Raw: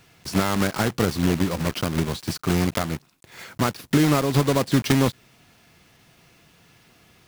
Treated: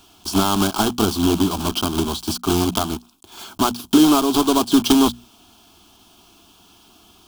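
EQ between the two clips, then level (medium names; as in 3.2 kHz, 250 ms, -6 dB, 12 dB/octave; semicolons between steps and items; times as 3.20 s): peaking EQ 3.2 kHz +9.5 dB 0.21 oct; hum notches 60/120/180/240 Hz; static phaser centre 520 Hz, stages 6; +7.5 dB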